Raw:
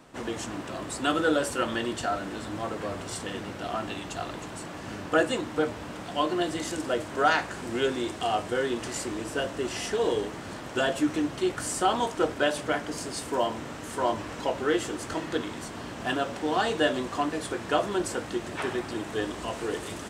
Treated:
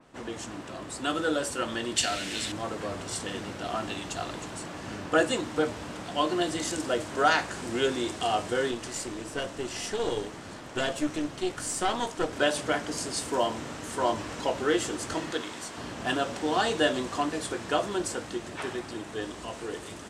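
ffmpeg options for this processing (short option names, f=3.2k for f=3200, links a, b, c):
-filter_complex "[0:a]asettb=1/sr,asplit=3[a][b][c];[a]atrim=end=1.964[d];[b]atrim=start=1.96:end=2.52,asetpts=PTS-STARTPTS,afade=t=in:d=0.004:c=qsin,afade=t=out:st=0.556:d=0.004:c=qsin,highshelf=f=1.7k:t=q:w=1.5:g=10.5[e];[c]atrim=start=2.516[f];[d][e]acrossfade=d=0.004:c1=hsin:c2=qsin[g];[g][f]acrossfade=d=0.004:c1=qsin:c2=hsin,asettb=1/sr,asplit=3[h][i][j];[h]atrim=end=8.714[k];[i]atrim=start=8.71:end=12.33,asetpts=PTS-STARTPTS,afade=t=in:d=0.004:c=qsin,afade=t=out:st=3.616:d=0.004:c=qsin,aeval=exprs='(tanh(7.94*val(0)+0.7)-tanh(0.7))/7.94':c=same[l];[j]atrim=start=12.326[m];[k][l]acrossfade=d=0.004:c1=hsin:c2=qsin[n];[n][m]acrossfade=d=0.004:c1=qsin:c2=hsin,asettb=1/sr,asplit=3[o][p][q];[o]atrim=end=15.314[r];[p]atrim=start=15.31:end=15.78,asetpts=PTS-STARTPTS,afade=t=in:d=0.004:c=qsin,afade=t=out:st=0.466:d=0.004:c=qsin,lowshelf=f=290:g=-10.5[s];[q]atrim=start=15.776[t];[r][s]acrossfade=d=0.004:c1=hsin:c2=qsin[u];[u][t]acrossfade=d=0.004:c1=qsin:c2=hsin,lowpass=11k,dynaudnorm=f=150:g=31:m=4dB,adynamicequalizer=threshold=0.01:dfrequency=3500:dqfactor=0.7:tfrequency=3500:tqfactor=0.7:attack=5:release=100:ratio=0.375:range=2.5:mode=boostabove:tftype=highshelf,volume=-4dB"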